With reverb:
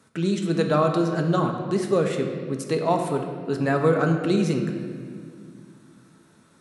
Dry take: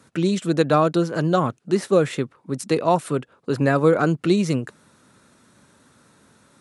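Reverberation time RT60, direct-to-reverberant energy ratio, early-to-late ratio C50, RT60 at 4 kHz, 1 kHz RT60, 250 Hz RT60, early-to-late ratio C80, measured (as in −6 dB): 2.0 s, 3.0 dB, 5.5 dB, 1.5 s, 1.7 s, 3.2 s, 6.5 dB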